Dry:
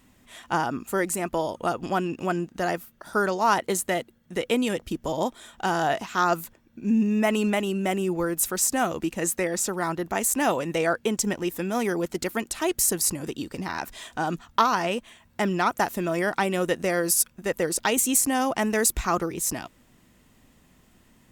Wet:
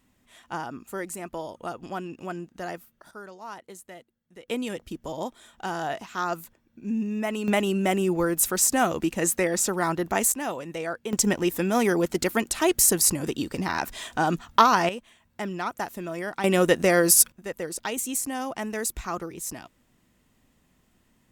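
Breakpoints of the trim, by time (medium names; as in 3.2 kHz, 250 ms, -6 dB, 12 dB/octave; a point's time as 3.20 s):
-8 dB
from 3.11 s -18.5 dB
from 4.48 s -6 dB
from 7.48 s +2 dB
from 10.32 s -7.5 dB
from 11.13 s +3.5 dB
from 14.89 s -7 dB
from 16.44 s +5 dB
from 17.32 s -7 dB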